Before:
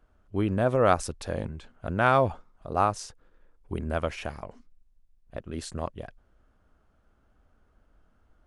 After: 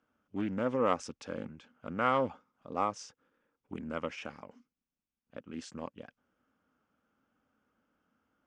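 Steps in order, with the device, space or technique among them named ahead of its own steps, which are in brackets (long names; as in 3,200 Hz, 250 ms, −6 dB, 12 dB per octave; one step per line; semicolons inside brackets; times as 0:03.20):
full-range speaker at full volume (highs frequency-modulated by the lows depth 0.3 ms; loudspeaker in its box 230–6,400 Hz, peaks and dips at 250 Hz +4 dB, 380 Hz −9 dB, 670 Hz −10 dB, 1,000 Hz −4 dB, 1,800 Hz −4 dB, 4,100 Hz −9 dB)
level −3 dB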